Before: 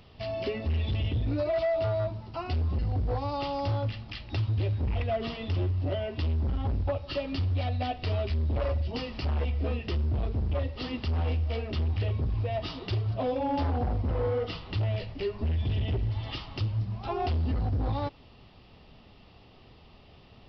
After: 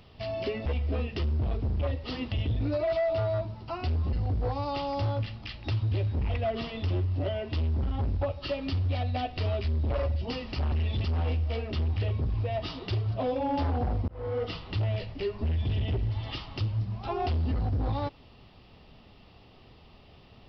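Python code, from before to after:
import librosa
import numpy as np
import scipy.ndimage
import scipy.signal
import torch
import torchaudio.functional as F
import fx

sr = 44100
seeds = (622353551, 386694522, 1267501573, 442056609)

y = fx.edit(x, sr, fx.swap(start_s=0.66, length_s=0.32, other_s=9.38, other_length_s=1.66),
    fx.fade_in_span(start_s=14.08, length_s=0.35), tone=tone)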